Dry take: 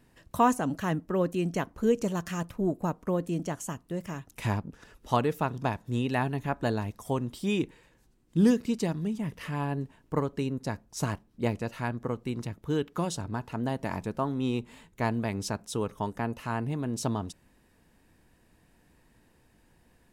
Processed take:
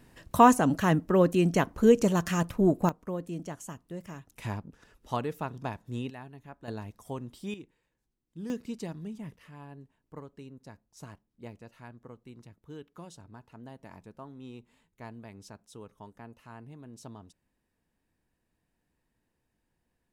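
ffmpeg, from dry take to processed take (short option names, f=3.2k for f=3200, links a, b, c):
-af "asetnsamples=n=441:p=0,asendcmd='2.89 volume volume -6dB;6.1 volume volume -17dB;6.68 volume volume -8dB;7.54 volume volume -18dB;8.5 volume volume -8.5dB;9.36 volume volume -16dB',volume=5dB"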